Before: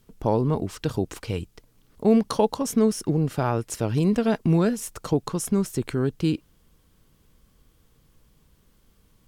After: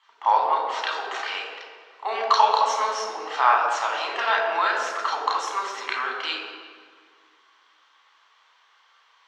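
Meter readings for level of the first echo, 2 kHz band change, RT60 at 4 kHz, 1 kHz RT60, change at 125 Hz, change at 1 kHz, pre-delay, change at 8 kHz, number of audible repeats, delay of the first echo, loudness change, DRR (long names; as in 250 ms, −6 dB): no echo audible, +14.0 dB, 1.3 s, 1.8 s, below −40 dB, +12.5 dB, 3 ms, −4.0 dB, no echo audible, no echo audible, +1.0 dB, −3.5 dB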